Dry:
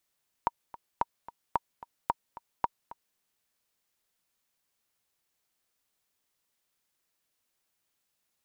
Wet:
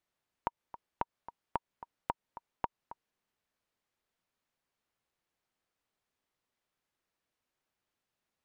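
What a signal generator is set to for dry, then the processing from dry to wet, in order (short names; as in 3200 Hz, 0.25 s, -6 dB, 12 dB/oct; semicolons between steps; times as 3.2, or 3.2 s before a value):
metronome 221 bpm, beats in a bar 2, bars 5, 942 Hz, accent 18 dB -12 dBFS
LPF 1900 Hz 6 dB/oct; compressor 3:1, threshold -31 dBFS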